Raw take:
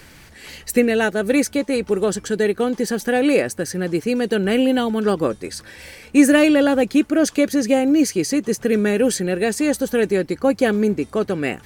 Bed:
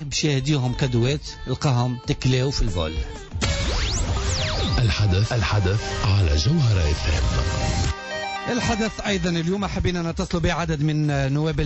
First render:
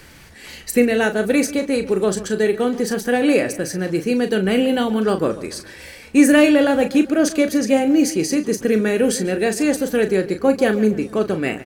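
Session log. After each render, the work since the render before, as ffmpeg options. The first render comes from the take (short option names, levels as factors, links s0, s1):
-filter_complex "[0:a]asplit=2[s0][s1];[s1]adelay=37,volume=0.355[s2];[s0][s2]amix=inputs=2:normalize=0,asplit=2[s3][s4];[s4]adelay=142,lowpass=f=3600:p=1,volume=0.158,asplit=2[s5][s6];[s6]adelay=142,lowpass=f=3600:p=1,volume=0.44,asplit=2[s7][s8];[s8]adelay=142,lowpass=f=3600:p=1,volume=0.44,asplit=2[s9][s10];[s10]adelay=142,lowpass=f=3600:p=1,volume=0.44[s11];[s3][s5][s7][s9][s11]amix=inputs=5:normalize=0"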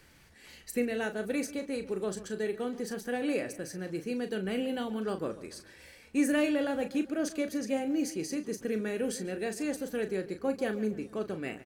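-af "volume=0.178"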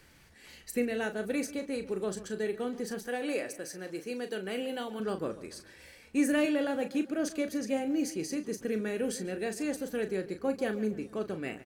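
-filter_complex "[0:a]asettb=1/sr,asplit=3[s0][s1][s2];[s0]atrim=end=3.074[s3];[s1]atrim=start=3.07:end=5,asetpts=PTS-STARTPTS,afade=t=in:d=0.004:c=qsin,afade=t=out:st=1.926:d=0.004:c=qsin,bass=f=250:g=-11,treble=f=4000:g=2[s4];[s2]atrim=start=4.996[s5];[s3][s4]acrossfade=d=0.004:c1=hsin:c2=qsin[s6];[s6][s5]acrossfade=d=0.004:c1=qsin:c2=hsin,asettb=1/sr,asplit=3[s7][s8][s9];[s7]atrim=end=6.454[s10];[s8]atrim=start=6.45:end=7.11,asetpts=PTS-STARTPTS,afade=t=in:d=0.004:c=qsin,afade=t=out:st=0.656:d=0.004:c=qsin,highpass=120[s11];[s9]atrim=start=7.106[s12];[s10][s11]acrossfade=d=0.004:c1=hsin:c2=qsin[s13];[s13][s12]acrossfade=d=0.004:c1=qsin:c2=hsin"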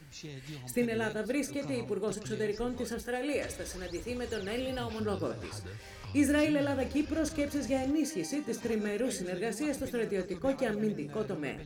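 -filter_complex "[1:a]volume=0.0668[s0];[0:a][s0]amix=inputs=2:normalize=0"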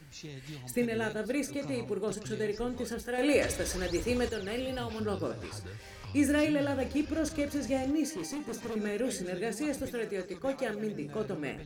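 -filter_complex "[0:a]asettb=1/sr,asplit=3[s0][s1][s2];[s0]atrim=end=3.184[s3];[s1]atrim=start=3.18:end=4.29,asetpts=PTS-STARTPTS,afade=t=in:d=0.004:c=qsin,afade=t=out:st=1.106:d=0.004:c=qsin,acontrast=73[s4];[s2]atrim=start=4.286[s5];[s3][s4]acrossfade=d=0.004:c1=hsin:c2=qsin[s6];[s6][s5]acrossfade=d=0.004:c1=qsin:c2=hsin,asettb=1/sr,asplit=3[s7][s8][s9];[s7]atrim=end=8.154[s10];[s8]atrim=start=8.15:end=8.76,asetpts=PTS-STARTPTS,afade=t=in:d=0.004:c=qsin,afade=t=out:st=0.606:d=0.004:c=qsin,asoftclip=type=hard:threshold=0.0211[s11];[s9]atrim=start=8.756[s12];[s10][s11]acrossfade=d=0.004:c1=hsin:c2=qsin[s13];[s13][s12]acrossfade=d=0.004:c1=qsin:c2=hsin,asettb=1/sr,asplit=3[s14][s15][s16];[s14]atrim=end=9.934[s17];[s15]atrim=start=9.93:end=10.94,asetpts=PTS-STARTPTS,afade=t=in:d=0.004:c=qsin,afade=t=out:st=1.006:d=0.004:c=qsin,lowshelf=f=280:g=-7.5[s18];[s16]atrim=start=10.936[s19];[s17][s18]acrossfade=d=0.004:c1=hsin:c2=qsin[s20];[s20][s19]acrossfade=d=0.004:c1=qsin:c2=hsin"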